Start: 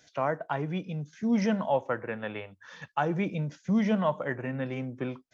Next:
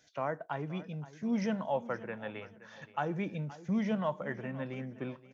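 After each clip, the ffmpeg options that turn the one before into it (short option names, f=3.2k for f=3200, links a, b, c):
-af "aecho=1:1:523|1046|1569:0.141|0.0438|0.0136,volume=-6dB"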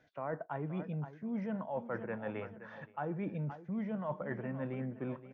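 -af "lowpass=1.7k,areverse,acompressor=threshold=-40dB:ratio=6,areverse,volume=5dB"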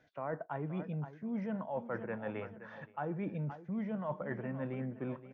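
-af anull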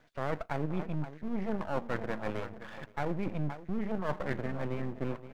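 -af "aeval=exprs='max(val(0),0)':c=same,volume=8dB"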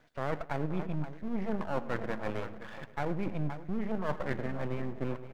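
-filter_complex "[0:a]asplit=2[a][b];[b]adelay=103,lowpass=f=3.5k:p=1,volume=-16dB,asplit=2[c][d];[d]adelay=103,lowpass=f=3.5k:p=1,volume=0.49,asplit=2[e][f];[f]adelay=103,lowpass=f=3.5k:p=1,volume=0.49,asplit=2[g][h];[h]adelay=103,lowpass=f=3.5k:p=1,volume=0.49[i];[a][c][e][g][i]amix=inputs=5:normalize=0"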